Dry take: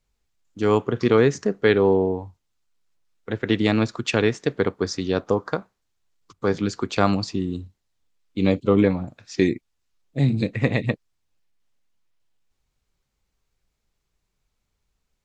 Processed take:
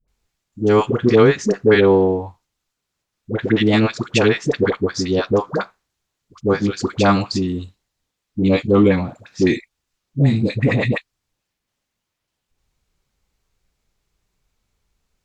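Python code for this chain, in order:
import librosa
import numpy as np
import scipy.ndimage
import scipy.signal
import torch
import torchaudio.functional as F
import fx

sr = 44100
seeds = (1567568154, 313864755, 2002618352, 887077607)

y = fx.dispersion(x, sr, late='highs', ms=80.0, hz=660.0)
y = fx.transient(y, sr, attack_db=-3, sustain_db=2, at=(8.38, 9.48))
y = fx.cheby_harmonics(y, sr, harmonics=(6,), levels_db=(-40,), full_scale_db=-6.0)
y = y * 10.0 ** (5.0 / 20.0)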